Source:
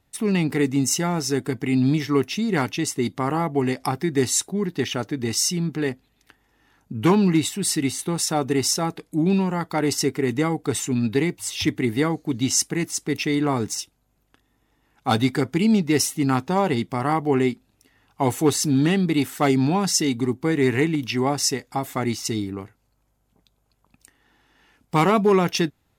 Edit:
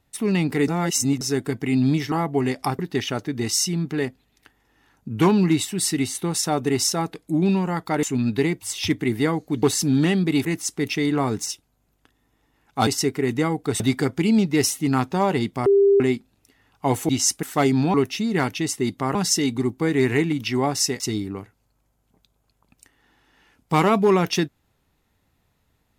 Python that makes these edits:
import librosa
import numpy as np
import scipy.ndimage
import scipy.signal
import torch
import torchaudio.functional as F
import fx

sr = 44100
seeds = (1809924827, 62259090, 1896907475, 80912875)

y = fx.edit(x, sr, fx.reverse_span(start_s=0.68, length_s=0.53),
    fx.move(start_s=2.12, length_s=1.21, to_s=19.78),
    fx.cut(start_s=4.0, length_s=0.63),
    fx.move(start_s=9.87, length_s=0.93, to_s=15.16),
    fx.swap(start_s=12.4, length_s=0.34, other_s=18.45, other_length_s=0.82),
    fx.bleep(start_s=17.02, length_s=0.34, hz=398.0, db=-12.0),
    fx.cut(start_s=21.63, length_s=0.59), tone=tone)